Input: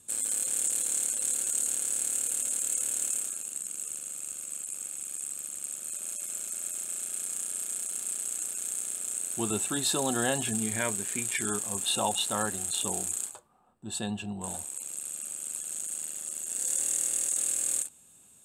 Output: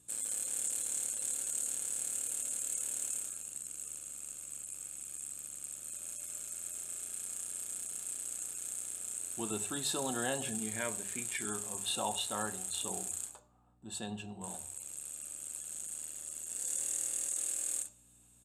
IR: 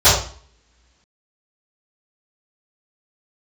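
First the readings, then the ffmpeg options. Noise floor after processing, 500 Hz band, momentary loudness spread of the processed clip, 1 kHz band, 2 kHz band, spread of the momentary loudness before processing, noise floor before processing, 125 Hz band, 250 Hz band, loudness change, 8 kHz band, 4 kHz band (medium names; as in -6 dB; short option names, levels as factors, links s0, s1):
-63 dBFS, -6.5 dB, 9 LU, -6.0 dB, -6.5 dB, 9 LU, -57 dBFS, -8.5 dB, -7.5 dB, -7.0 dB, -7.0 dB, -6.5 dB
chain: -filter_complex "[0:a]aeval=exprs='val(0)+0.00126*(sin(2*PI*60*n/s)+sin(2*PI*2*60*n/s)/2+sin(2*PI*3*60*n/s)/3+sin(2*PI*4*60*n/s)/4+sin(2*PI*5*60*n/s)/5)':c=same,highpass=94,aresample=32000,aresample=44100,bandreject=f=50:t=h:w=6,bandreject=f=100:t=h:w=6,bandreject=f=150:t=h:w=6,bandreject=f=200:t=h:w=6,asplit=2[s0][s1];[1:a]atrim=start_sample=2205[s2];[s1][s2]afir=irnorm=-1:irlink=0,volume=0.0133[s3];[s0][s3]amix=inputs=2:normalize=0,volume=0.447"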